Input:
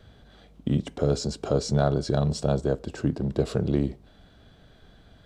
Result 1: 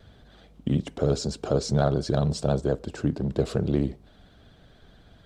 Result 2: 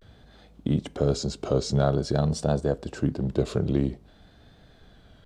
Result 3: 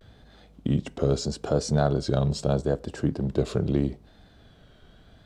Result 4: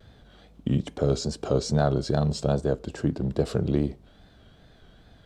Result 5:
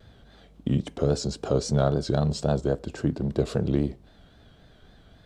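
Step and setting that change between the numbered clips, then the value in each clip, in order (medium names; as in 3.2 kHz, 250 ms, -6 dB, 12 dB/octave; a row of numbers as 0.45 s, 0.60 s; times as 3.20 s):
vibrato, rate: 16 Hz, 0.5 Hz, 0.78 Hz, 2.4 Hz, 3.7 Hz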